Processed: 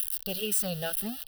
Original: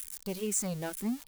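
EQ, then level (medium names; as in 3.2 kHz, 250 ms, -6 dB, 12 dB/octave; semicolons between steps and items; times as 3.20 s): peaking EQ 2.8 kHz +9.5 dB 0.41 oct; treble shelf 4.8 kHz +9.5 dB; static phaser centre 1.5 kHz, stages 8; +4.5 dB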